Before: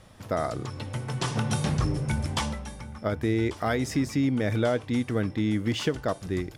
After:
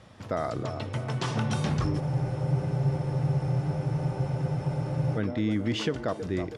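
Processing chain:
high-pass filter 70 Hz
delay with a band-pass on its return 322 ms, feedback 55%, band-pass 580 Hz, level −10.5 dB
in parallel at +2.5 dB: brickwall limiter −21.5 dBFS, peak gain reduction 9 dB
on the sum: high-frequency loss of the air 63 metres
frozen spectrum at 0:02.02, 3.14 s
level −6 dB

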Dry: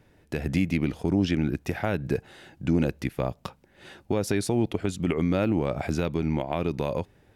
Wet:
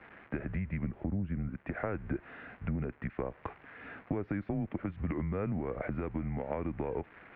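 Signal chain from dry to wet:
spike at every zero crossing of −27.5 dBFS
0:00.84–0:01.49: spectral tilt −2.5 dB per octave
downward compressor 6 to 1, threshold −29 dBFS, peak gain reduction 15.5 dB
single-sideband voice off tune −98 Hz 170–2,200 Hz

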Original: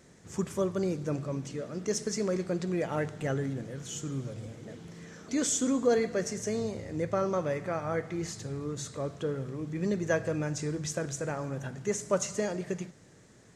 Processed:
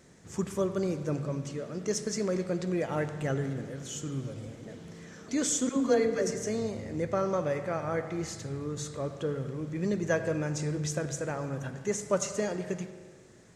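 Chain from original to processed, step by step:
0:05.69–0:06.35: all-pass dispersion lows, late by 83 ms, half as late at 490 Hz
convolution reverb RT60 1.6 s, pre-delay 87 ms, DRR 11 dB

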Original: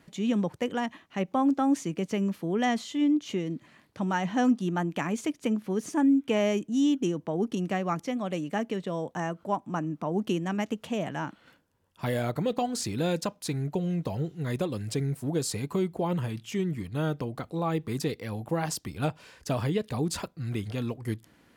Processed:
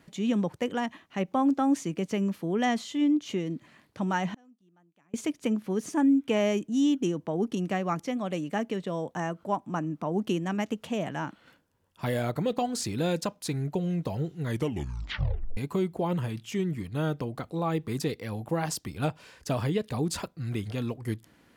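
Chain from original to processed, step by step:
0:04.34–0:05.14: gate with flip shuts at −29 dBFS, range −35 dB
0:14.46: tape stop 1.11 s

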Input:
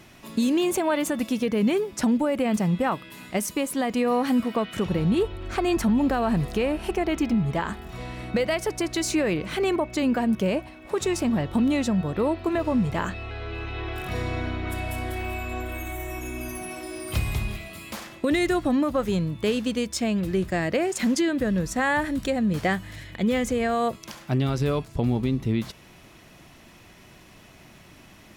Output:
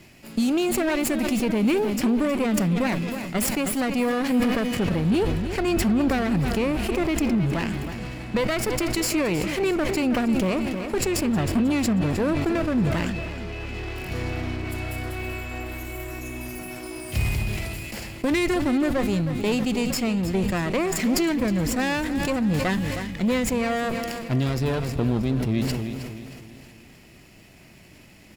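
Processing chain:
lower of the sound and its delayed copy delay 0.4 ms
on a send: repeating echo 315 ms, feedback 54%, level −12.5 dB
on the sum: level that may fall only so fast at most 24 dB per second

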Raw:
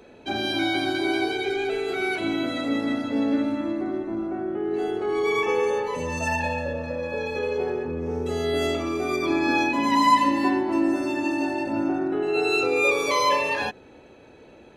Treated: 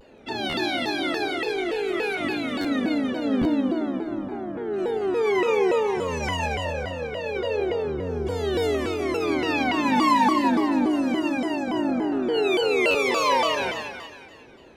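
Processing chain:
echo with a time of its own for lows and highs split 1,100 Hz, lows 122 ms, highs 183 ms, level −4 dB
buffer that repeats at 0:00.49/0:02.60/0:03.40/0:12.90, samples 512, times 3
pitch modulation by a square or saw wave saw down 3.5 Hz, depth 250 cents
level −2.5 dB

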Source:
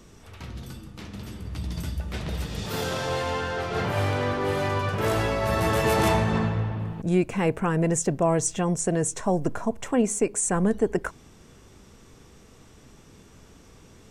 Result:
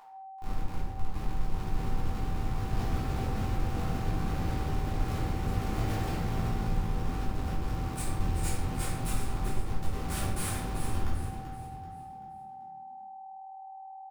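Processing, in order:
sub-octave generator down 2 octaves, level 0 dB
guitar amp tone stack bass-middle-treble 6-0-2
comparator with hysteresis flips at −43.5 dBFS
steady tone 770 Hz −49 dBFS
formants moved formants +3 semitones
on a send: echo with shifted repeats 385 ms, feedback 41%, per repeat +39 Hz, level −9 dB
on the sum: rectangular room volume 300 cubic metres, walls mixed, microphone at 3.3 metres
level −2 dB

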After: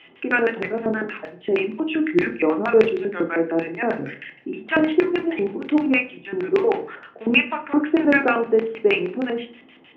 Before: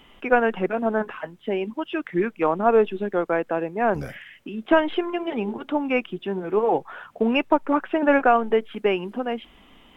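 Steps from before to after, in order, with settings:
bass and treble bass +3 dB, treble −10 dB
notch filter 2,300 Hz, Q 14
auto-filter band-pass square 6.4 Hz 350–2,400 Hz
noise in a band 73–780 Hz −69 dBFS
convolution reverb RT60 0.40 s, pre-delay 22 ms, DRR 7 dB
level +6 dB

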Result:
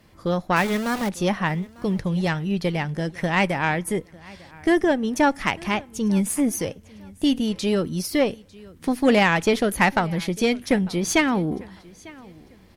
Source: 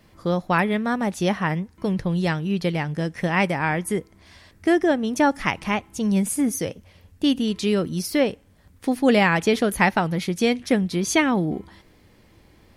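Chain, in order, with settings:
0:00.56–0:01.09: centre clipping without the shift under −26.5 dBFS
repeating echo 899 ms, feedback 27%, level −23 dB
harmonic generator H 6 −23 dB, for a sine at −4 dBFS

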